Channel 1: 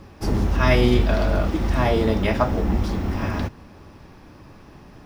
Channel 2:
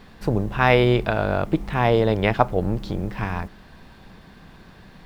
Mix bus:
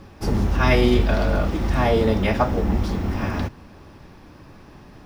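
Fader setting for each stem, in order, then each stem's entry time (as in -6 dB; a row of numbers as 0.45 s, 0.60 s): 0.0 dB, -10.5 dB; 0.00 s, 0.00 s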